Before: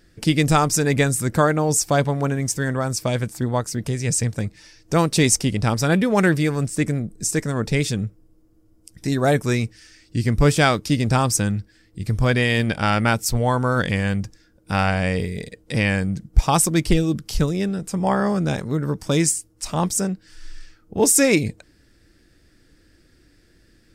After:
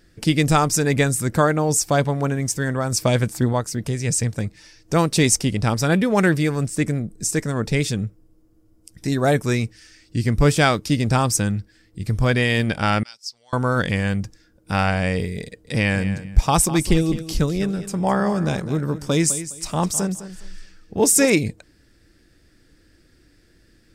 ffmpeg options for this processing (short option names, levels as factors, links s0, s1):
-filter_complex "[0:a]asettb=1/sr,asplit=3[s0][s1][s2];[s0]atrim=end=13.034[s3];[s1]atrim=start=13.03:end=13.53,asetpts=PTS-STARTPTS,afade=t=in:d=0.004:c=qsin,afade=t=out:st=0.496:d=0.004:c=qsin,bandpass=f=5000:t=q:w=7.1[s4];[s2]atrim=start=13.526[s5];[s3][s4]acrossfade=d=0.004:c1=hsin:c2=qsin[s6];[s6][s5]acrossfade=d=0.004:c1=qsin:c2=hsin,asettb=1/sr,asplit=3[s7][s8][s9];[s7]atrim=end=15.444[s10];[s8]atrim=start=15.44:end=21.3,asetpts=PTS-STARTPTS,afade=t=in:d=0.004:c=qsin,afade=t=out:st=5.856:d=0.004:c=qsin,aecho=1:1:207|414|621:0.224|0.0493|0.0108,atrim=end_sample=258426[s11];[s9]atrim=start=21.296[s12];[s10][s11]acrossfade=d=0.004:c1=hsin:c2=qsin[s13];[s13][s12]acrossfade=d=0.004:c1=qsin:c2=hsin,asplit=3[s14][s15][s16];[s14]atrim=end=2.922[s17];[s15]atrim=start=2.918:end=3.532,asetpts=PTS-STARTPTS,volume=1.58[s18];[s16]atrim=start=3.528[s19];[s17][s18]acrossfade=d=0.004:c1=hsin:c2=hsin[s20];[s20][s19]acrossfade=d=0.004:c1=hsin:c2=hsin"